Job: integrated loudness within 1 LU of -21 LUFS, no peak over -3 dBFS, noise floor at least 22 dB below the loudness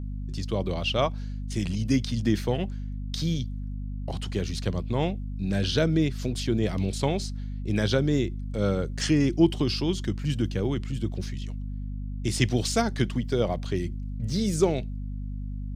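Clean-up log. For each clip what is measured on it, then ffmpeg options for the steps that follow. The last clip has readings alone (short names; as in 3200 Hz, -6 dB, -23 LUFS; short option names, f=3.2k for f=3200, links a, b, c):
hum 50 Hz; harmonics up to 250 Hz; hum level -30 dBFS; loudness -28.0 LUFS; peak -7.0 dBFS; loudness target -21.0 LUFS
-> -af "bandreject=f=50:t=h:w=4,bandreject=f=100:t=h:w=4,bandreject=f=150:t=h:w=4,bandreject=f=200:t=h:w=4,bandreject=f=250:t=h:w=4"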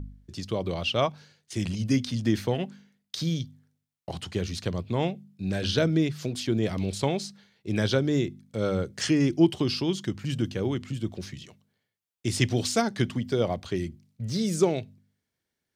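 hum none; loudness -28.0 LUFS; peak -7.5 dBFS; loudness target -21.0 LUFS
-> -af "volume=7dB,alimiter=limit=-3dB:level=0:latency=1"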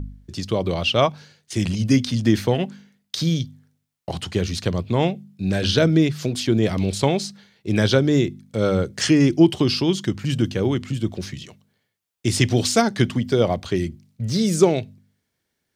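loudness -21.0 LUFS; peak -3.0 dBFS; noise floor -77 dBFS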